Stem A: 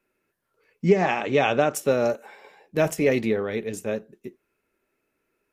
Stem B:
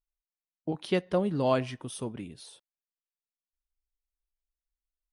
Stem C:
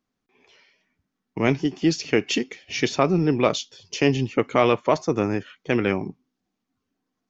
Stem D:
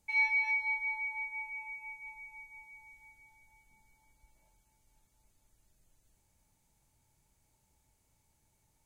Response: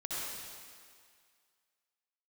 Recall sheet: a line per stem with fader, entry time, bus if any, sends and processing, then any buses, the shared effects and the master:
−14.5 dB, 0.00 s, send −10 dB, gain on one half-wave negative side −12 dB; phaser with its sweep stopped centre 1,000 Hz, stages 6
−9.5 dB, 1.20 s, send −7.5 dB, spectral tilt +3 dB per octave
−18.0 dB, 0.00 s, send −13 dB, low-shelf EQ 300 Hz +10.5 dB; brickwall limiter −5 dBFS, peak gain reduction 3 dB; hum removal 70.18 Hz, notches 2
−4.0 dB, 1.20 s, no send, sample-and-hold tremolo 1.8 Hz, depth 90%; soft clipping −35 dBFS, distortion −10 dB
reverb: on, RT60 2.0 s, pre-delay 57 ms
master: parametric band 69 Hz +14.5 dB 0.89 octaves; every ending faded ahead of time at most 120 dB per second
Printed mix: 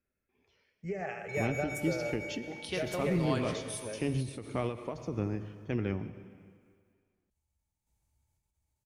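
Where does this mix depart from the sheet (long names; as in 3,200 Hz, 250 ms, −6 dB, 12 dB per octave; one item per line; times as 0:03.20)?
stem A: missing gain on one half-wave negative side −12 dB
stem B: entry 1.20 s → 1.80 s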